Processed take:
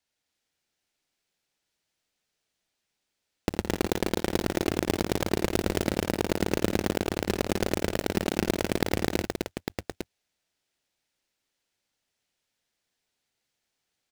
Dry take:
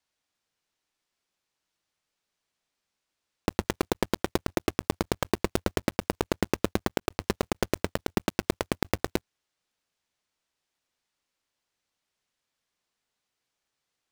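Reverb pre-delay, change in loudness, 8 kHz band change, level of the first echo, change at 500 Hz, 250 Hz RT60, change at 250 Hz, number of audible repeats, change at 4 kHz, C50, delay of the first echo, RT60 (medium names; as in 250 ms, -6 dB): no reverb, +2.0 dB, +2.5 dB, -9.0 dB, +2.5 dB, no reverb, +2.5 dB, 3, +2.5 dB, no reverb, 58 ms, no reverb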